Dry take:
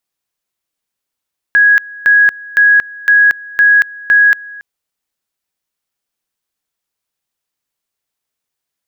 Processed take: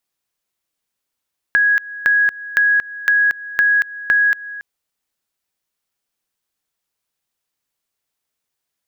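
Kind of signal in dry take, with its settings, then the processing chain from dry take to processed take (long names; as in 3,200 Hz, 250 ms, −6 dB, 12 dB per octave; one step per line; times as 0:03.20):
tone at two levels in turn 1,660 Hz −4.5 dBFS, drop 22.5 dB, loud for 0.23 s, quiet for 0.28 s, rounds 6
downward compressor 4 to 1, threshold −14 dBFS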